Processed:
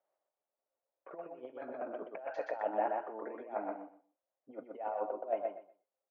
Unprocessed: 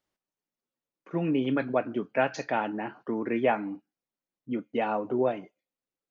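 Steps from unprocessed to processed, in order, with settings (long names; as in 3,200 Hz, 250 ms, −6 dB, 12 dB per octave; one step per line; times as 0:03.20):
compressor whose output falls as the input rises −33 dBFS, ratio −0.5
four-pole ladder band-pass 700 Hz, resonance 60%
repeating echo 123 ms, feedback 19%, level −3.5 dB
level +6.5 dB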